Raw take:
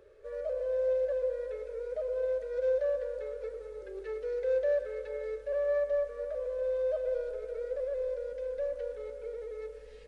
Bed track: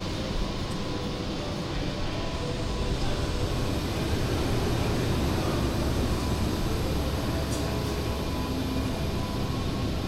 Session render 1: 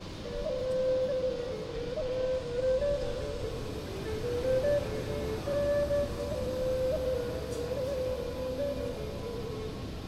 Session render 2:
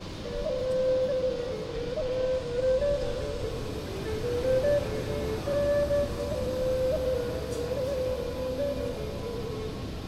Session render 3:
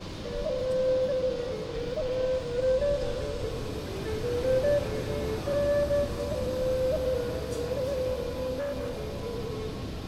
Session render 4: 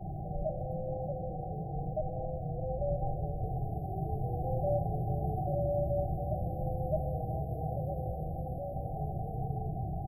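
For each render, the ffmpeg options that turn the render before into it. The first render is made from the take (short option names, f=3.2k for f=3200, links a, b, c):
-filter_complex "[1:a]volume=-10.5dB[a];[0:a][a]amix=inputs=2:normalize=0"
-af "volume=3dB"
-filter_complex "[0:a]asettb=1/sr,asplit=3[a][b][c];[a]atrim=end=1.744[d];[b]atrim=start=1.74:end=2.67,asetpts=PTS-STARTPTS,afade=t=in:d=0.004:c=qsin,afade=t=out:st=0.926:d=0.004:c=qsin,aeval=exprs='val(0)*gte(abs(val(0)),0.00178)':c=same[e];[c]atrim=start=2.666[f];[d][e]acrossfade=d=0.004:c1=hsin:c2=qsin[g];[g][f]acrossfade=d=0.004:c1=qsin:c2=hsin,asettb=1/sr,asplit=3[h][i][j];[h]atrim=end=8.594[k];[i]atrim=start=8.59:end=9.23,asetpts=PTS-STARTPTS,afade=t=in:d=0.004:c=qsin,afade=t=out:st=0.636:d=0.004:c=qsin,asoftclip=type=hard:threshold=-29dB[l];[j]atrim=start=9.226[m];[k][l]acrossfade=d=0.004:c1=hsin:c2=qsin[n];[n][m]acrossfade=d=0.004:c1=qsin:c2=hsin"
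-af "afftfilt=real='re*(1-between(b*sr/4096,800,11000))':imag='im*(1-between(b*sr/4096,800,11000))':win_size=4096:overlap=0.75,firequalizer=gain_entry='entry(100,0);entry(150,8);entry(240,-17);entry(350,-5);entry(500,-16);entry(760,13);entry(1100,0);entry(1500,-29);entry(2300,-21);entry(4200,-11)':delay=0.05:min_phase=1"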